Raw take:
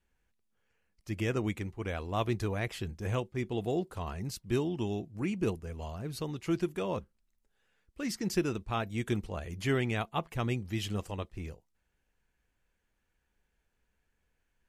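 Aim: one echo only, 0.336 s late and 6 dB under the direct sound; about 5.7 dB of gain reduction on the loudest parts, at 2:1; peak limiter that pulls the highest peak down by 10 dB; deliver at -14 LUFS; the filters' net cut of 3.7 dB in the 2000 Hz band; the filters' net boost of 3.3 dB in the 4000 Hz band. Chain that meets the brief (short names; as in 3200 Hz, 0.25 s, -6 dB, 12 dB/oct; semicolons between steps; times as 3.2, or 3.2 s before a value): bell 2000 Hz -7 dB; bell 4000 Hz +7 dB; compressor 2:1, threshold -35 dBFS; limiter -31.5 dBFS; echo 0.336 s -6 dB; gain +27 dB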